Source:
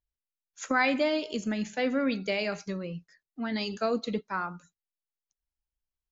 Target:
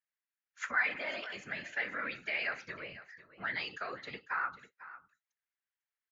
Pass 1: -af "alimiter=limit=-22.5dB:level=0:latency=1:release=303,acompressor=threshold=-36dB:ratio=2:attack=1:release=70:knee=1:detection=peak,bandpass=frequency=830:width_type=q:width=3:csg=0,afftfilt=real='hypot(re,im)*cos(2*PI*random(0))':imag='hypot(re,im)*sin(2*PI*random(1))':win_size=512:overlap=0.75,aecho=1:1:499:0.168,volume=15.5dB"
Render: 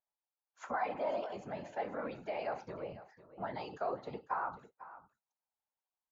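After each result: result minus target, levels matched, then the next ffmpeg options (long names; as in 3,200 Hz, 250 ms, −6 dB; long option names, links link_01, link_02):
2,000 Hz band −10.5 dB; downward compressor: peak gain reduction +3 dB
-af "alimiter=limit=-22.5dB:level=0:latency=1:release=303,acompressor=threshold=-36dB:ratio=2:attack=1:release=70:knee=1:detection=peak,bandpass=frequency=1800:width_type=q:width=3:csg=0,afftfilt=real='hypot(re,im)*cos(2*PI*random(0))':imag='hypot(re,im)*sin(2*PI*random(1))':win_size=512:overlap=0.75,aecho=1:1:499:0.168,volume=15.5dB"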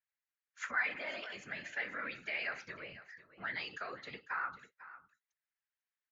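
downward compressor: peak gain reduction +3 dB
-af "alimiter=limit=-22.5dB:level=0:latency=1:release=303,acompressor=threshold=-29.5dB:ratio=2:attack=1:release=70:knee=1:detection=peak,bandpass=frequency=1800:width_type=q:width=3:csg=0,afftfilt=real='hypot(re,im)*cos(2*PI*random(0))':imag='hypot(re,im)*sin(2*PI*random(1))':win_size=512:overlap=0.75,aecho=1:1:499:0.168,volume=15.5dB"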